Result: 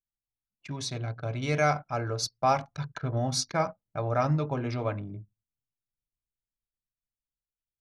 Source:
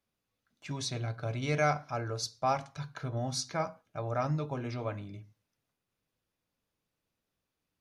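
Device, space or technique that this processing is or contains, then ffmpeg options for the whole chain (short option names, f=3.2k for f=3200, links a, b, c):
voice memo with heavy noise removal: -af "anlmdn=0.0398,dynaudnorm=f=210:g=17:m=4.5dB,volume=1dB"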